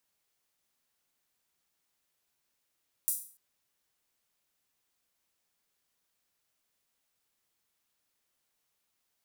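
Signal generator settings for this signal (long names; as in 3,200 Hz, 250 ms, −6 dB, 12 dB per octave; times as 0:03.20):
open synth hi-hat length 0.29 s, high-pass 9,300 Hz, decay 0.43 s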